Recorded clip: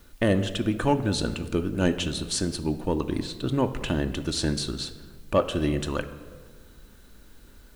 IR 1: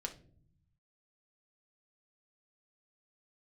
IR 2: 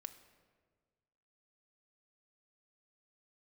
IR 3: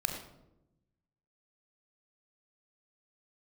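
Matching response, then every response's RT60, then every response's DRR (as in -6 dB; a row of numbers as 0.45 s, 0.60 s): 2; no single decay rate, 1.6 s, 0.90 s; 2.0 dB, 7.5 dB, 3.0 dB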